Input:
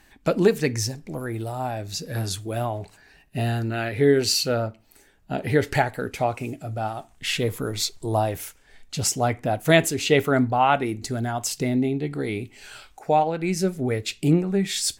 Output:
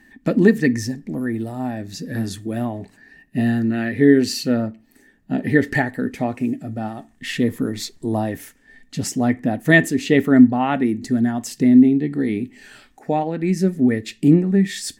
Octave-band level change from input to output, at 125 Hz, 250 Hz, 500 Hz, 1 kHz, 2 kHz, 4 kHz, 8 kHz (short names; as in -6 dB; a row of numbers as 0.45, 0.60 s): +2.0, +10.0, +0.5, -3.0, +5.0, -4.0, -4.5 dB